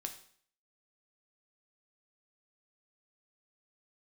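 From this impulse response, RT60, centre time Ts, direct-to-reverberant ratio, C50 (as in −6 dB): 0.55 s, 11 ms, 4.5 dB, 11.0 dB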